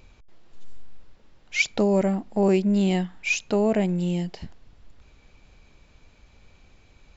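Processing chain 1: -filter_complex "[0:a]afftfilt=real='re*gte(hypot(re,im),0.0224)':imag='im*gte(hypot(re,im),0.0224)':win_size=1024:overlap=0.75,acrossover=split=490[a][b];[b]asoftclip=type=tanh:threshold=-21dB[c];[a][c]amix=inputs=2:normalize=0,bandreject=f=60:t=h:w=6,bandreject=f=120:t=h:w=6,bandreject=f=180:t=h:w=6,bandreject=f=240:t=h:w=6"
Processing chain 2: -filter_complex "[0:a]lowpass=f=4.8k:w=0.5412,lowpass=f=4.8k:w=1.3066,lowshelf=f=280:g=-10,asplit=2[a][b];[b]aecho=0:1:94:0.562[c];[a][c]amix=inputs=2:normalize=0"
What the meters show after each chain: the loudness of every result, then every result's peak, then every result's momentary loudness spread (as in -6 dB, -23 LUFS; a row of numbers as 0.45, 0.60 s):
-24.5, -25.5 LUFS; -12.0, -11.0 dBFS; 9, 11 LU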